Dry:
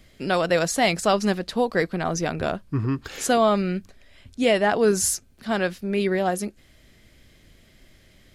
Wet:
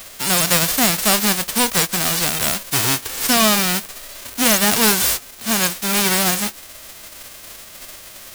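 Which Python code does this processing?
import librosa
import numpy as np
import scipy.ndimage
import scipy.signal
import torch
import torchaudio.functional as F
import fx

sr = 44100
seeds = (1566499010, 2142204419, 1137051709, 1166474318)

y = fx.envelope_flatten(x, sr, power=0.1)
y = fx.power_curve(y, sr, exponent=0.7)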